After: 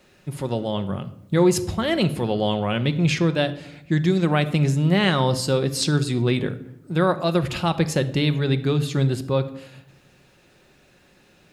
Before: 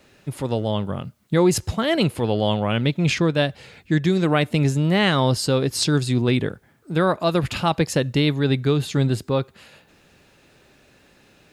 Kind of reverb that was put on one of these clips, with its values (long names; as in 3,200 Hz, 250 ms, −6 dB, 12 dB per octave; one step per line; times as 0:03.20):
rectangular room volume 2,300 cubic metres, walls furnished, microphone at 0.97 metres
level −2 dB